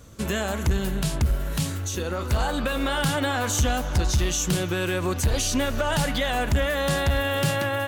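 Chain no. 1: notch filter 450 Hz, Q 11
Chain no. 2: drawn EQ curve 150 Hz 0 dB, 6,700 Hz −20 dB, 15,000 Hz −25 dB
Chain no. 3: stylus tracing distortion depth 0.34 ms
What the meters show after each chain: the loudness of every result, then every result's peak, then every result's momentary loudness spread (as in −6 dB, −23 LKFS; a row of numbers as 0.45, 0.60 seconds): −25.0, −28.5, −25.0 LKFS; −14.5, −15.0, −16.0 dBFS; 4, 5, 4 LU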